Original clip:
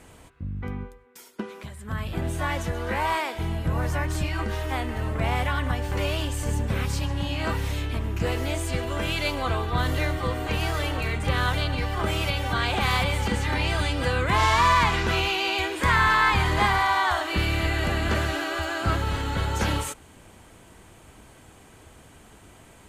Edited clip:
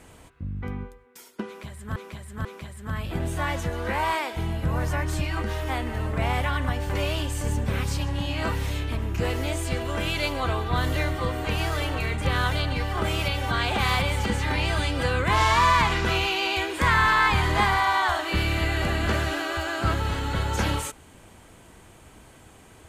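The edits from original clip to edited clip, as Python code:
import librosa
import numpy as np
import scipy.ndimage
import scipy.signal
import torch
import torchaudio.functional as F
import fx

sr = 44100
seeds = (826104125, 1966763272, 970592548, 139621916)

y = fx.edit(x, sr, fx.repeat(start_s=1.47, length_s=0.49, count=3), tone=tone)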